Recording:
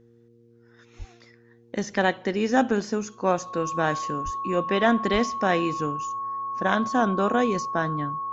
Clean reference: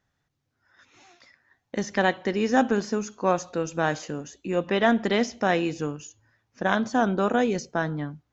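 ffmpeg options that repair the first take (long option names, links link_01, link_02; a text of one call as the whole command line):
ffmpeg -i in.wav -filter_complex "[0:a]bandreject=frequency=117.3:width_type=h:width=4,bandreject=frequency=234.6:width_type=h:width=4,bandreject=frequency=351.9:width_type=h:width=4,bandreject=frequency=469.2:width_type=h:width=4,bandreject=frequency=1100:width=30,asplit=3[link_01][link_02][link_03];[link_01]afade=type=out:start_time=0.98:duration=0.02[link_04];[link_02]highpass=frequency=140:width=0.5412,highpass=frequency=140:width=1.3066,afade=type=in:start_time=0.98:duration=0.02,afade=type=out:start_time=1.1:duration=0.02[link_05];[link_03]afade=type=in:start_time=1.1:duration=0.02[link_06];[link_04][link_05][link_06]amix=inputs=3:normalize=0,asplit=3[link_07][link_08][link_09];[link_07]afade=type=out:start_time=4.24:duration=0.02[link_10];[link_08]highpass=frequency=140:width=0.5412,highpass=frequency=140:width=1.3066,afade=type=in:start_time=4.24:duration=0.02,afade=type=out:start_time=4.36:duration=0.02[link_11];[link_09]afade=type=in:start_time=4.36:duration=0.02[link_12];[link_10][link_11][link_12]amix=inputs=3:normalize=0,asplit=3[link_13][link_14][link_15];[link_13]afade=type=out:start_time=5.12:duration=0.02[link_16];[link_14]highpass=frequency=140:width=0.5412,highpass=frequency=140:width=1.3066,afade=type=in:start_time=5.12:duration=0.02,afade=type=out:start_time=5.24:duration=0.02[link_17];[link_15]afade=type=in:start_time=5.24:duration=0.02[link_18];[link_16][link_17][link_18]amix=inputs=3:normalize=0" out.wav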